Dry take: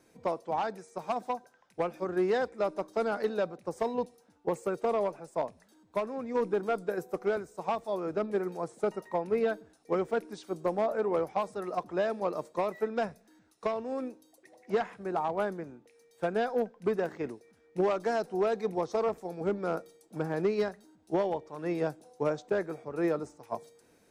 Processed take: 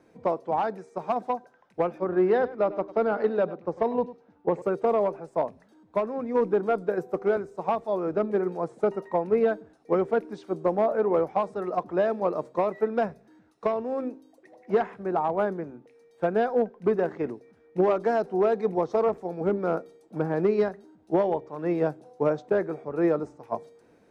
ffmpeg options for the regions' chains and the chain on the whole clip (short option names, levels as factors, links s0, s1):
-filter_complex "[0:a]asettb=1/sr,asplit=3[s0][s1][s2];[s0]atrim=end=1.984[s3];[s1]atrim=start=1.98:end=4.62,asetpts=PTS-STARTPTS,afade=t=in:d=0.004:c=qsin,afade=t=out:st=2.636:d=0.004:c=qsin,lowpass=4000,aecho=1:1:99:0.15,atrim=end_sample=116424[s4];[s2]atrim=start=4.616[s5];[s3][s4]acrossfade=d=0.004:c1=hsin:c2=qsin[s6];[s6][s5]acrossfade=d=0.004:c1=qsin:c2=hsin,lowpass=f=1300:p=1,lowshelf=f=77:g=-6,bandreject=f=131.8:t=h:w=4,bandreject=f=263.6:t=h:w=4,bandreject=f=395.4:t=h:w=4,volume=2.11"